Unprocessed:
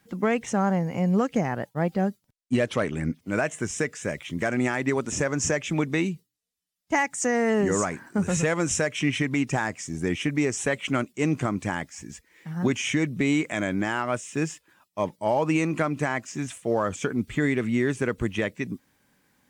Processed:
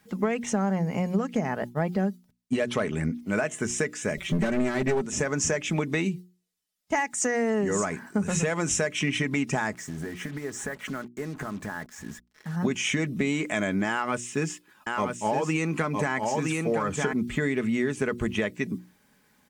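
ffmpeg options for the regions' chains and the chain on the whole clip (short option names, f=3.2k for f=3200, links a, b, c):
-filter_complex "[0:a]asettb=1/sr,asplit=3[a][b][c];[a]atrim=end=4.174[d];[b]atrim=start=4.17:end=5.06,asetpts=PTS-STARTPTS,afade=t=in:d=0.004:c=qsin,afade=t=out:st=0.886:d=0.004:c=qsin,lowshelf=f=380:g=11,aecho=1:1:5.2:0.97,atrim=end_sample=39249,aeval=exprs='clip(val(0),-1,0.0891)':c=same[e];[c]atrim=start=5.056[f];[d][e]acrossfade=d=0.004:c1=hsin:c2=qsin[g];[g][f]acrossfade=d=0.004:c1=qsin:c2=hsin,asettb=1/sr,asplit=3[h][i][j];[h]atrim=end=9.734[k];[i]atrim=start=9.73:end=12.56,asetpts=PTS-STARTPTS,afade=t=in:d=0.004:c=qsin,afade=t=out:st=2.826:d=0.004:c=qsin,highshelf=f=2.1k:t=q:w=3:g=-6.5,acompressor=threshold=-31dB:ratio=10:attack=3.2:release=140:knee=1:detection=peak,acrusher=bits=7:mix=0:aa=0.5[l];[j]atrim=start=12.556[m];[k][l]acrossfade=d=0.004:c1=hsin:c2=qsin[n];[n][m]acrossfade=d=0.004:c1=qsin:c2=hsin,asettb=1/sr,asplit=3[o][p][q];[o]atrim=end=13.904[r];[p]atrim=start=13.9:end=17.13,asetpts=PTS-STARTPTS,afade=t=in:d=0.004:c=qsin,afade=t=out:st=3.226:d=0.004:c=qsin,bandreject=f=630:w=8.4,aecho=1:1:963:0.596,atrim=end_sample=142443[s];[q]atrim=start=17.126[t];[r][s]acrossfade=d=0.004:c1=hsin:c2=qsin[u];[u][t]acrossfade=d=0.004:c1=qsin:c2=hsin,bandreject=f=60:t=h:w=6,bandreject=f=120:t=h:w=6,bandreject=f=180:t=h:w=6,bandreject=f=240:t=h:w=6,bandreject=f=300:t=h:w=6,bandreject=f=360:t=h:w=6,aecho=1:1:4.7:0.33,acompressor=threshold=-24dB:ratio=6,volume=2dB"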